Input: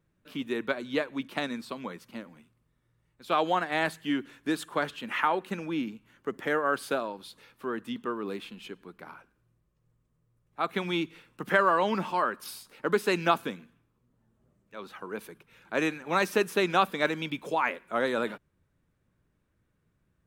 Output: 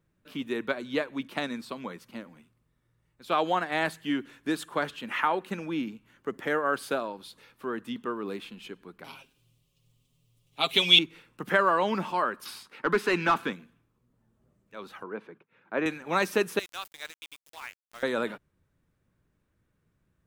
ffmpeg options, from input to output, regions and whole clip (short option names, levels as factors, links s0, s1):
-filter_complex "[0:a]asettb=1/sr,asplit=3[s0][s1][s2];[s0]atrim=end=9.044[s3];[s1]atrim=start=9.04:end=10.99,asetpts=PTS-STARTPTS,afade=t=in:d=0.004:c=qsin,afade=t=out:st=1.946:d=0.004:c=qsin,highshelf=f=2200:t=q:w=3:g=11,aecho=1:1:7.4:0.7,atrim=end_sample=85995[s4];[s2]atrim=start=10.986[s5];[s3][s4]acrossfade=d=0.004:c1=hsin:c2=qsin[s6];[s6][s5]acrossfade=d=0.004:c1=qsin:c2=hsin,asettb=1/sr,asplit=3[s7][s8][s9];[s7]atrim=end=12.454[s10];[s8]atrim=start=12.45:end=13.53,asetpts=PTS-STARTPTS,afade=t=in:d=0.004:c=qsin,afade=t=out:st=1.076:d=0.004:c=qsin,agate=range=0.0224:threshold=0.00178:ratio=3:release=100:detection=peak,equalizer=f=590:t=o:w=1.1:g=-8.5,asplit=2[s11][s12];[s12]highpass=f=720:p=1,volume=8.91,asoftclip=type=tanh:threshold=0.299[s13];[s11][s13]amix=inputs=2:normalize=0,lowpass=f=1200:p=1,volume=0.501[s14];[s9]atrim=start=13.526[s15];[s10][s14]acrossfade=d=0.004:c1=hsin:c2=qsin[s16];[s16][s15]acrossfade=d=0.004:c1=qsin:c2=hsin,asettb=1/sr,asplit=3[s17][s18][s19];[s17]atrim=end=15.034[s20];[s18]atrim=start=15.03:end=15.86,asetpts=PTS-STARTPTS,afade=t=in:d=0.004:c=qsin,afade=t=out:st=0.826:d=0.004:c=qsin,agate=range=0.0224:threshold=0.00178:ratio=3:release=100:detection=peak,highpass=160,lowpass=2000[s21];[s19]atrim=start=15.856[s22];[s20][s21]acrossfade=d=0.004:c1=hsin:c2=qsin[s23];[s23][s22]acrossfade=d=0.004:c1=qsin:c2=hsin,asettb=1/sr,asplit=3[s24][s25][s26];[s24]atrim=end=16.594[s27];[s25]atrim=start=16.59:end=18.03,asetpts=PTS-STARTPTS,afade=t=in:d=0.004:c=qsin,afade=t=out:st=1.436:d=0.004:c=qsin,aderivative,aeval=exprs='val(0)*gte(abs(val(0)),0.00708)':c=same[s28];[s26]atrim=start=18.026[s29];[s27][s28]acrossfade=d=0.004:c1=hsin:c2=qsin[s30];[s30][s29]acrossfade=d=0.004:c1=qsin:c2=hsin"